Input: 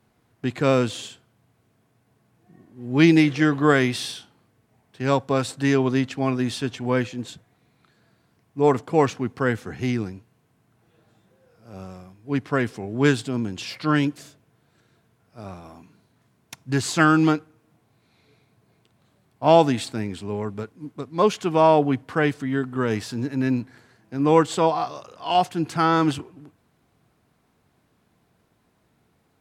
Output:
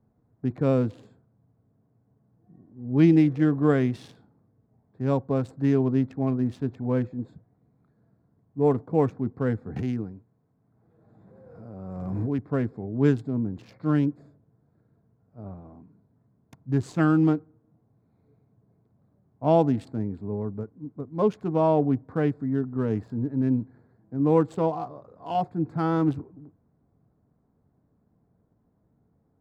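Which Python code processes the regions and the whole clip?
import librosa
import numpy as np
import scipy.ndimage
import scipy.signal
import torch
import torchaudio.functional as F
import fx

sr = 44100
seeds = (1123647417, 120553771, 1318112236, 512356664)

y = fx.chain(x, sr, fx.tilt_eq(slope=1.5),
    fx.pre_swell(db_per_s=25.0), at=(9.76, 12.39))
y = fx.wiener(y, sr, points=15)
y = fx.tilt_shelf(y, sr, db=8.5, hz=890.0)
y = fx.notch(y, sr, hz=360.0, q=12.0)
y = y * librosa.db_to_amplitude(-8.0)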